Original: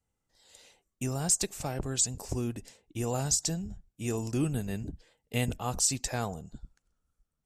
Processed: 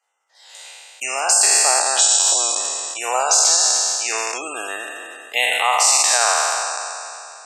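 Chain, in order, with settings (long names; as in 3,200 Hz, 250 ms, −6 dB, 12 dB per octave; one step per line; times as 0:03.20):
peak hold with a decay on every bin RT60 2.76 s
0:01.17–0:01.81: notch filter 3,700 Hz, Q 5.4
gate on every frequency bin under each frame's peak −30 dB strong
high-pass filter 710 Hz 24 dB per octave
high-shelf EQ 6,600 Hz −11.5 dB
boost into a limiter +20 dB
level −3.5 dB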